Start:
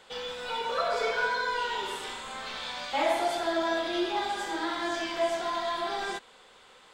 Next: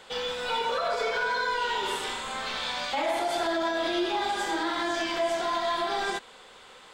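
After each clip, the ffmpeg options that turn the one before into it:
ffmpeg -i in.wav -af "alimiter=level_in=0.5dB:limit=-24dB:level=0:latency=1:release=83,volume=-0.5dB,volume=5dB" out.wav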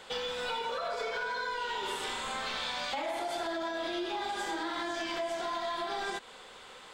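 ffmpeg -i in.wav -af "acompressor=threshold=-32dB:ratio=6" out.wav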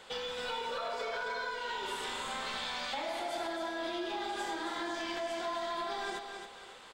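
ffmpeg -i in.wav -af "aecho=1:1:271|542|813|1084:0.447|0.156|0.0547|0.0192,volume=-3dB" out.wav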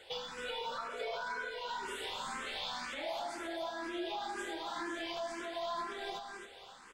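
ffmpeg -i in.wav -filter_complex "[0:a]asplit=2[link_01][link_02];[link_02]afreqshift=2[link_03];[link_01][link_03]amix=inputs=2:normalize=1" out.wav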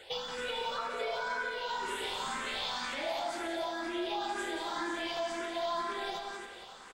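ffmpeg -i in.wav -af "aecho=1:1:179:0.398,volume=3.5dB" out.wav

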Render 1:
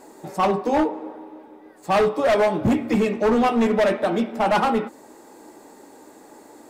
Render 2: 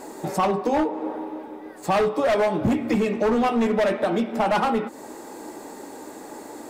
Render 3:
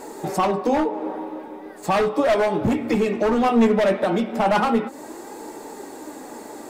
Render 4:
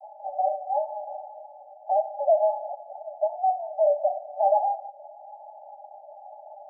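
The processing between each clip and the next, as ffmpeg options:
ffmpeg -i in.wav -af "acompressor=threshold=-30dB:ratio=3,volume=7.5dB" out.wav
ffmpeg -i in.wav -af "flanger=delay=2.2:depth=3.3:regen=70:speed=0.36:shape=sinusoidal,volume=6dB" out.wav
ffmpeg -i in.wav -af "aeval=exprs='0.335*(cos(1*acos(clip(val(0)/0.335,-1,1)))-cos(1*PI/2))+0.00944*(cos(6*acos(clip(val(0)/0.335,-1,1)))-cos(6*PI/2))':channel_layout=same,asuperpass=centerf=700:order=20:qfactor=2.5" out.wav

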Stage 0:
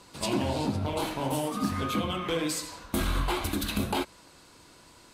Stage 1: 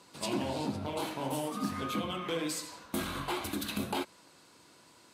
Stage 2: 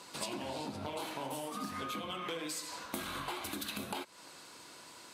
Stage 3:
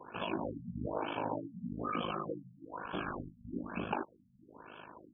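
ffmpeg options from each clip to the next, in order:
ffmpeg -i in.wav -af "highpass=130,volume=-4.5dB" out.wav
ffmpeg -i in.wav -af "lowshelf=frequency=370:gain=-8,acompressor=threshold=-44dB:ratio=10,volume=7.5dB" out.wav
ffmpeg -i in.wav -af "asuperstop=centerf=2000:order=12:qfactor=4.5,aeval=exprs='val(0)*sin(2*PI*26*n/s)':channel_layout=same,afftfilt=real='re*lt(b*sr/1024,220*pow(3500/220,0.5+0.5*sin(2*PI*1.1*pts/sr)))':imag='im*lt(b*sr/1024,220*pow(3500/220,0.5+0.5*sin(2*PI*1.1*pts/sr)))':win_size=1024:overlap=0.75,volume=7.5dB" out.wav

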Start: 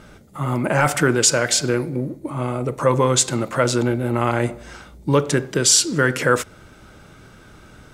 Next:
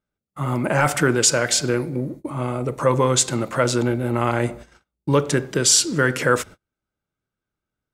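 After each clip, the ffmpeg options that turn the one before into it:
ffmpeg -i in.wav -af "agate=range=-39dB:threshold=-35dB:ratio=16:detection=peak,volume=-1dB" out.wav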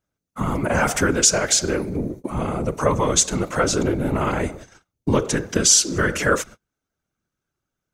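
ffmpeg -i in.wav -filter_complex "[0:a]equalizer=frequency=6200:width_type=o:width=0.27:gain=8.5,asplit=2[link_01][link_02];[link_02]acompressor=threshold=-24dB:ratio=12,volume=0dB[link_03];[link_01][link_03]amix=inputs=2:normalize=0,afftfilt=real='hypot(re,im)*cos(2*PI*random(0))':imag='hypot(re,im)*sin(2*PI*random(1))':win_size=512:overlap=0.75,volume=2.5dB" out.wav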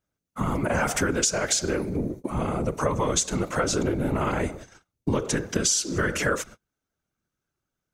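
ffmpeg -i in.wav -af "acompressor=threshold=-18dB:ratio=6,volume=-2dB" out.wav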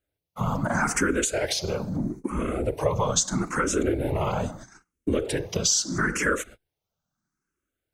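ffmpeg -i in.wav -filter_complex "[0:a]asplit=2[link_01][link_02];[link_02]afreqshift=0.77[link_03];[link_01][link_03]amix=inputs=2:normalize=1,volume=2.5dB" out.wav

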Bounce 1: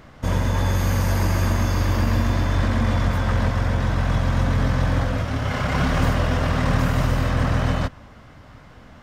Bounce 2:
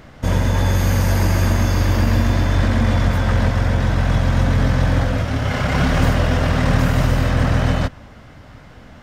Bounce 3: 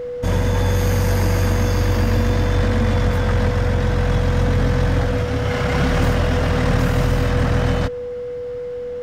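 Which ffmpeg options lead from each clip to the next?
ffmpeg -i in.wav -af "equalizer=frequency=1100:width=3.5:gain=-4,volume=4dB" out.wav
ffmpeg -i in.wav -af "aeval=exprs='val(0)+0.0631*sin(2*PI*490*n/s)':channel_layout=same,acontrast=36,volume=-6dB" out.wav

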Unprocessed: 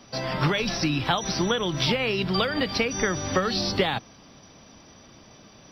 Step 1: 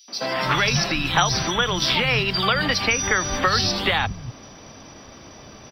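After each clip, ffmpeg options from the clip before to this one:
ffmpeg -i in.wav -filter_complex "[0:a]acrossover=split=130|830[link_01][link_02][link_03];[link_02]acompressor=threshold=-36dB:ratio=6[link_04];[link_01][link_04][link_03]amix=inputs=3:normalize=0,acrossover=split=180|3700[link_05][link_06][link_07];[link_06]adelay=80[link_08];[link_05]adelay=310[link_09];[link_09][link_08][link_07]amix=inputs=3:normalize=0,volume=8.5dB" out.wav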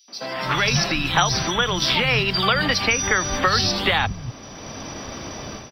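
ffmpeg -i in.wav -af "dynaudnorm=framelen=370:gausssize=3:maxgain=15dB,volume=-5dB" out.wav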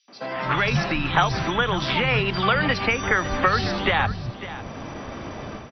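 ffmpeg -i in.wav -af "lowpass=2500,aecho=1:1:552:0.188" out.wav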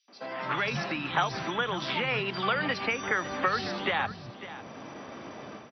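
ffmpeg -i in.wav -af "highpass=180,volume=-7dB" out.wav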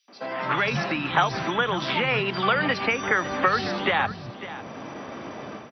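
ffmpeg -i in.wav -af "equalizer=frequency=5400:width_type=o:width=1.6:gain=-3,volume=6dB" out.wav

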